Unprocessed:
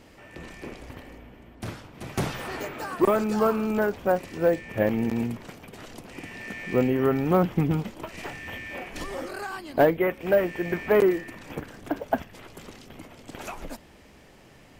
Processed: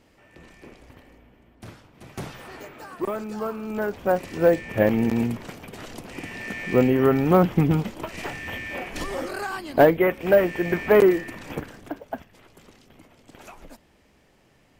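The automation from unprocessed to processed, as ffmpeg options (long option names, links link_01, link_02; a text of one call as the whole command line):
ffmpeg -i in.wav -af "volume=4dB,afade=type=in:start_time=3.61:duration=0.79:silence=0.281838,afade=type=out:start_time=11.52:duration=0.47:silence=0.266073" out.wav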